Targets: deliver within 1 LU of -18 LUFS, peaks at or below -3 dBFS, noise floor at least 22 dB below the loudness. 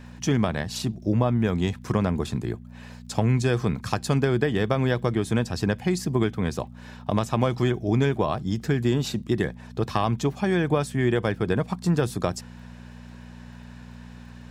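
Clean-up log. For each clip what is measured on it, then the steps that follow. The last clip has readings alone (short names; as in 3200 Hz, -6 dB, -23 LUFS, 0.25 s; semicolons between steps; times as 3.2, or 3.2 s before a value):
ticks 33/s; hum 60 Hz; harmonics up to 240 Hz; hum level -43 dBFS; loudness -25.0 LUFS; peak -7.0 dBFS; loudness target -18.0 LUFS
-> de-click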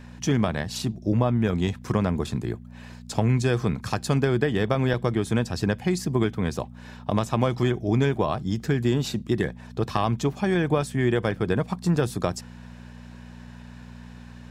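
ticks 0.069/s; hum 60 Hz; harmonics up to 240 Hz; hum level -43 dBFS
-> de-hum 60 Hz, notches 4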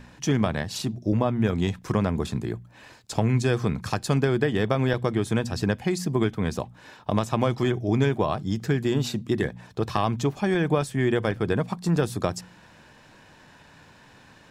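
hum none; loudness -25.5 LUFS; peak -7.0 dBFS; loudness target -18.0 LUFS
-> gain +7.5 dB; limiter -3 dBFS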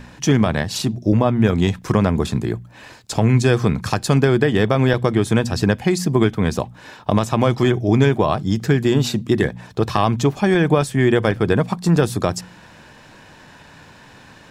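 loudness -18.5 LUFS; peak -3.0 dBFS; noise floor -45 dBFS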